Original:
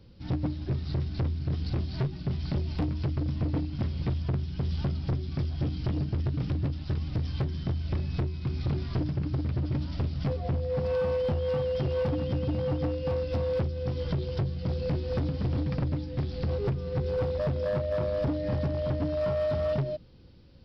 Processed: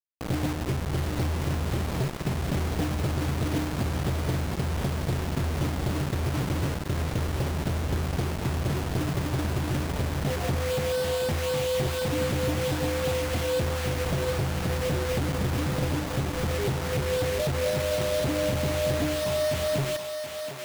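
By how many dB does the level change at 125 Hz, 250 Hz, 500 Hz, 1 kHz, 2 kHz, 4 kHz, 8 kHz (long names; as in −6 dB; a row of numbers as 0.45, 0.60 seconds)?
+1.0 dB, +2.5 dB, +2.5 dB, +8.5 dB, +12.5 dB, +11.0 dB, can't be measured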